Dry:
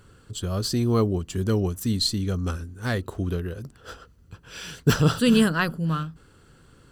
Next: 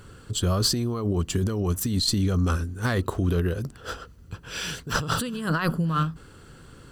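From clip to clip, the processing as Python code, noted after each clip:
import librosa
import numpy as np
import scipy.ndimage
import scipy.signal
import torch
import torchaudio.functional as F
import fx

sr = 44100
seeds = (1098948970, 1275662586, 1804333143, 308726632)

y = fx.dynamic_eq(x, sr, hz=1100.0, q=2.6, threshold_db=-44.0, ratio=4.0, max_db=5)
y = fx.over_compress(y, sr, threshold_db=-27.0, ratio=-1.0)
y = F.gain(torch.from_numpy(y), 2.5).numpy()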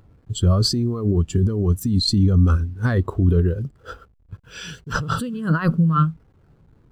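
y = fx.delta_hold(x, sr, step_db=-43.5)
y = fx.spectral_expand(y, sr, expansion=1.5)
y = F.gain(torch.from_numpy(y), 2.5).numpy()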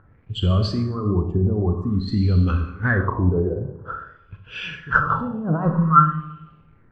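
y = fx.rev_schroeder(x, sr, rt60_s=1.0, comb_ms=29, drr_db=4.5)
y = fx.filter_lfo_lowpass(y, sr, shape='sine', hz=0.5, low_hz=730.0, high_hz=2800.0, q=4.6)
y = F.gain(torch.from_numpy(y), -3.0).numpy()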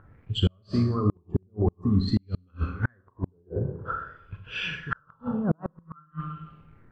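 y = fx.gate_flip(x, sr, shuts_db=-12.0, range_db=-41)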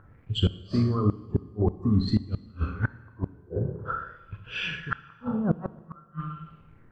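y = fx.rev_plate(x, sr, seeds[0], rt60_s=1.4, hf_ratio=1.0, predelay_ms=0, drr_db=16.0)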